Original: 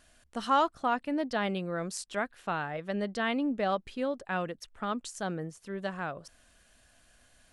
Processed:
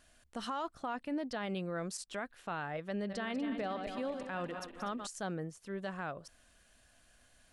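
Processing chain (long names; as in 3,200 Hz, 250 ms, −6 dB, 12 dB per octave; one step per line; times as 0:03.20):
0:02.89–0:05.07: feedback delay that plays each chunk backwards 122 ms, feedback 68%, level −10 dB
brickwall limiter −26 dBFS, peak gain reduction 12 dB
level −3 dB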